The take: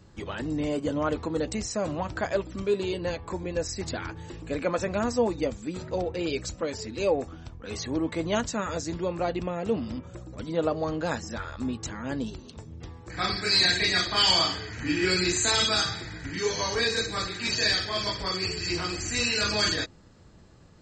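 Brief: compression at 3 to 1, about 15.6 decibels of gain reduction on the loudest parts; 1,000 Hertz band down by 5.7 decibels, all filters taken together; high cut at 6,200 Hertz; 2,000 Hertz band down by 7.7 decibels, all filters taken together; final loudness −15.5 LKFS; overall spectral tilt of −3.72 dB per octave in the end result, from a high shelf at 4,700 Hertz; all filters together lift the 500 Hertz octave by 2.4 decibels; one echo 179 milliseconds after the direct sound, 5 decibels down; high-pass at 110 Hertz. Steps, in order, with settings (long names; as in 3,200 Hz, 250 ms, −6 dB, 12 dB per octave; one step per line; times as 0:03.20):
high-pass filter 110 Hz
low-pass filter 6,200 Hz
parametric band 500 Hz +5 dB
parametric band 1,000 Hz −7.5 dB
parametric band 2,000 Hz −9 dB
high-shelf EQ 4,700 Hz +5.5 dB
downward compressor 3 to 1, threshold −40 dBFS
single-tap delay 179 ms −5 dB
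level +23 dB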